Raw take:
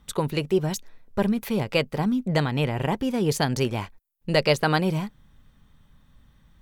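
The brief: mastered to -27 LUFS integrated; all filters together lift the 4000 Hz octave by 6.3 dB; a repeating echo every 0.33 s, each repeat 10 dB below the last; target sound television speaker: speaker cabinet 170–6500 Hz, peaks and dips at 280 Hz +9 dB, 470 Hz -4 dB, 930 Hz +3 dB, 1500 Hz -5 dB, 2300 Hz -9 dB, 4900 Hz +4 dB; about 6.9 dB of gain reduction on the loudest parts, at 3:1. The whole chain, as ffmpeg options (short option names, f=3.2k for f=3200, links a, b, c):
-af "equalizer=f=4k:t=o:g=7.5,acompressor=threshold=-24dB:ratio=3,highpass=f=170:w=0.5412,highpass=f=170:w=1.3066,equalizer=f=280:t=q:w=4:g=9,equalizer=f=470:t=q:w=4:g=-4,equalizer=f=930:t=q:w=4:g=3,equalizer=f=1.5k:t=q:w=4:g=-5,equalizer=f=2.3k:t=q:w=4:g=-9,equalizer=f=4.9k:t=q:w=4:g=4,lowpass=f=6.5k:w=0.5412,lowpass=f=6.5k:w=1.3066,aecho=1:1:330|660|990|1320:0.316|0.101|0.0324|0.0104,volume=1dB"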